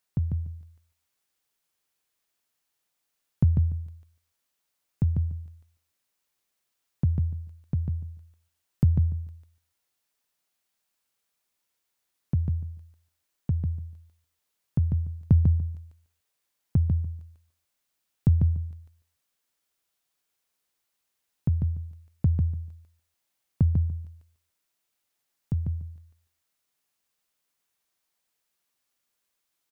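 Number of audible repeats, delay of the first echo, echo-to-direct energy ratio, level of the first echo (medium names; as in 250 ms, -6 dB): 2, 146 ms, -4.5 dB, -4.5 dB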